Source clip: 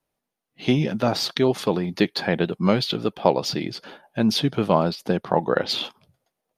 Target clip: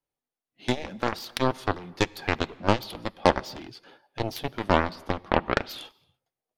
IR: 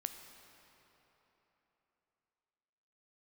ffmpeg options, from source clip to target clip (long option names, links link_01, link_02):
-filter_complex "[0:a]aeval=exprs='0.794*(cos(1*acos(clip(val(0)/0.794,-1,1)))-cos(1*PI/2))+0.0501*(cos(3*acos(clip(val(0)/0.794,-1,1)))-cos(3*PI/2))+0.126*(cos(7*acos(clip(val(0)/0.794,-1,1)))-cos(7*PI/2))':channel_layout=same,flanger=delay=2.3:depth=1.4:regen=-56:speed=0.49:shape=sinusoidal,asplit=2[link_01][link_02];[1:a]atrim=start_sample=2205,afade=type=out:start_time=0.36:duration=0.01,atrim=end_sample=16317[link_03];[link_02][link_03]afir=irnorm=-1:irlink=0,volume=-9.5dB[link_04];[link_01][link_04]amix=inputs=2:normalize=0,volume=2dB"